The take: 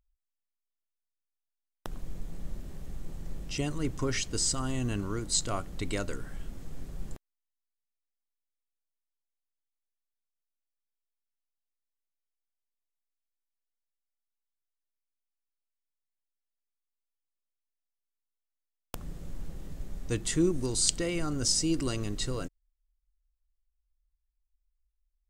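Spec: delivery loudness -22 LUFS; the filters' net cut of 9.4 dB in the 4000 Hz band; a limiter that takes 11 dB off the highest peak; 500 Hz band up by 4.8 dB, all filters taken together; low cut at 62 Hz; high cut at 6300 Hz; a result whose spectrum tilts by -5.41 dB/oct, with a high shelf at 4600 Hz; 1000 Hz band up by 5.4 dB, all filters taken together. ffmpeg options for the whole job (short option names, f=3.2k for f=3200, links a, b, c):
-af "highpass=62,lowpass=6.3k,equalizer=f=500:t=o:g=5.5,equalizer=f=1k:t=o:g=6.5,equalizer=f=4k:t=o:g=-7,highshelf=f=4.6k:g=-7.5,volume=12.5dB,alimiter=limit=-11.5dB:level=0:latency=1"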